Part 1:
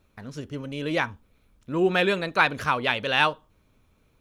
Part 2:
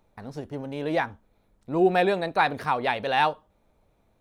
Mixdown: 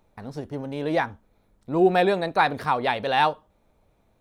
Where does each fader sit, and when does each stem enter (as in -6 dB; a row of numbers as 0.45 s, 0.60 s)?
-19.5 dB, +1.5 dB; 0.00 s, 0.00 s